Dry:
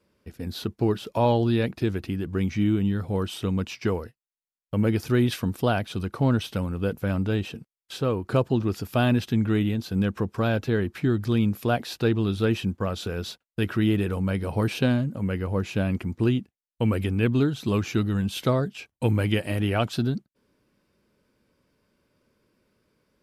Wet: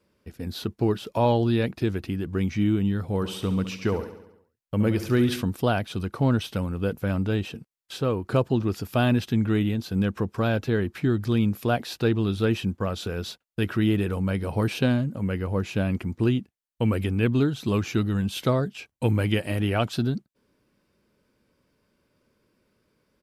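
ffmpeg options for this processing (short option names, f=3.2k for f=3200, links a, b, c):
-filter_complex "[0:a]asplit=3[a][b][c];[a]afade=t=out:st=3.21:d=0.02[d];[b]aecho=1:1:69|138|207|276|345|414|483:0.251|0.148|0.0874|0.0516|0.0304|0.018|0.0106,afade=t=in:st=3.21:d=0.02,afade=t=out:st=5.41:d=0.02[e];[c]afade=t=in:st=5.41:d=0.02[f];[d][e][f]amix=inputs=3:normalize=0"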